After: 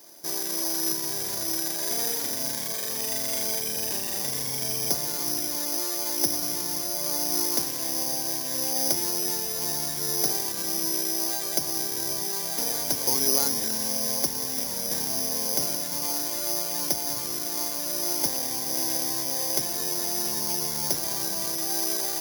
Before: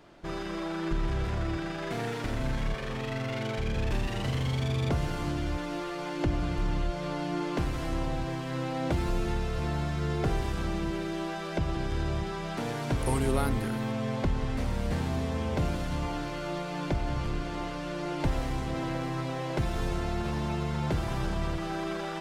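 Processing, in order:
high-pass filter 270 Hz 12 dB per octave
notch filter 1,300 Hz, Q 5
bad sample-rate conversion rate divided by 8×, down filtered, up zero stuff
level −1 dB

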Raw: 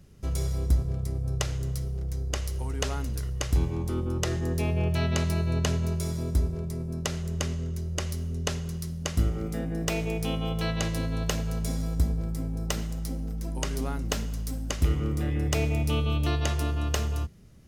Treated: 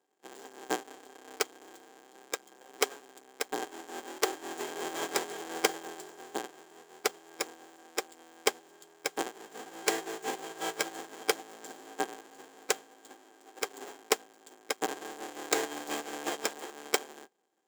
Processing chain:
each half-wave held at its own peak
high-pass filter 350 Hz 24 dB per octave
parametric band 9,100 Hz +10.5 dB 0.31 octaves
formants moved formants −4 semitones
hollow resonant body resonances 770/1,600/3,200 Hz, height 13 dB, ringing for 65 ms
expander for the loud parts 2.5 to 1, over −36 dBFS

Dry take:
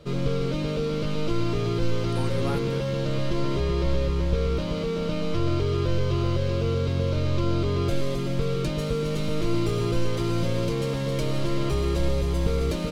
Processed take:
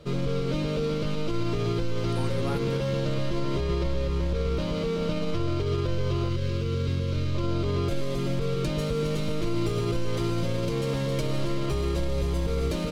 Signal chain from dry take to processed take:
brickwall limiter −18 dBFS, peak gain reduction 7 dB
0:06.29–0:07.35: parametric band 730 Hz −13.5 dB 0.74 octaves

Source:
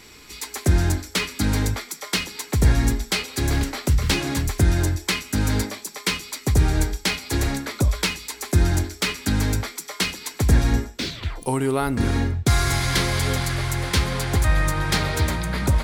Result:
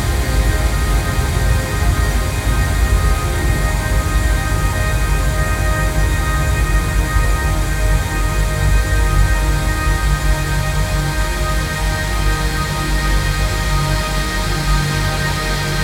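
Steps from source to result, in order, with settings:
extreme stretch with random phases 30×, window 1.00 s, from 0:14.32
level +4 dB

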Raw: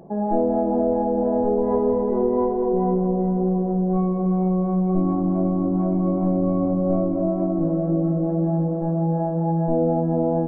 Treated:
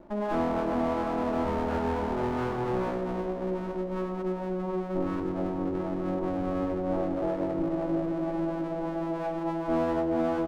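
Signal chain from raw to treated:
lower of the sound and its delayed copy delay 3.3 ms
on a send: single-tap delay 99 ms −10 dB
on the sum: level −5.5 dB

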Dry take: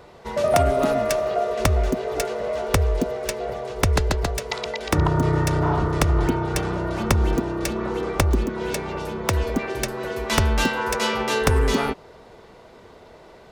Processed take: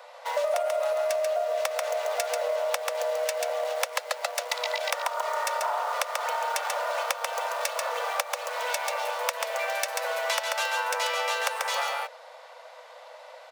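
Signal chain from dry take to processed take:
in parallel at −11.5 dB: bit reduction 5 bits
on the sum: Chebyshev high-pass filter 500 Hz, order 8
single-tap delay 138 ms −5 dB
downward compressor 6 to 1, threshold −27 dBFS, peak gain reduction 15 dB
level +2 dB

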